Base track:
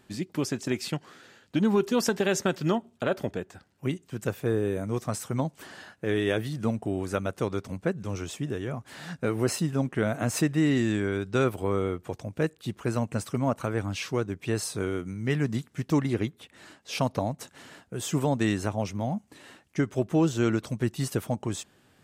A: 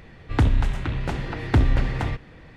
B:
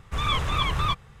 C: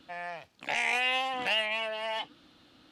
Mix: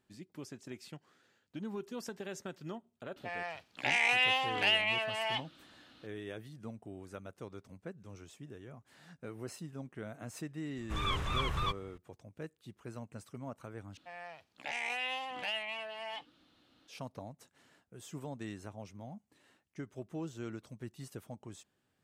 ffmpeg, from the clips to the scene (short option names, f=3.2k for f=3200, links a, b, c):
-filter_complex "[3:a]asplit=2[a][b];[0:a]volume=-17.5dB[c];[a]equalizer=f=2.7k:t=o:w=2.5:g=3.5[d];[c]asplit=2[e][f];[e]atrim=end=13.974[g];[b]atrim=end=2.91,asetpts=PTS-STARTPTS,volume=-8.5dB[h];[f]atrim=start=16.876[i];[d]atrim=end=2.91,asetpts=PTS-STARTPTS,volume=-3dB,afade=t=in:d=0.004:c=hsin,afade=t=out:st=2.906:d=0.004:c=hsin,adelay=3160[j];[2:a]atrim=end=1.2,asetpts=PTS-STARTPTS,volume=-9dB,afade=t=in:d=0.004:c=hsin,afade=t=out:st=1.196:d=0.004:c=hsin,adelay=10780[k];[g][h]acrossfade=d=0.004:c1=hsin:c2=hsin[l];[l][i]acrossfade=d=0.004:c1=hsin:c2=hsin[m];[m][j][k]amix=inputs=3:normalize=0"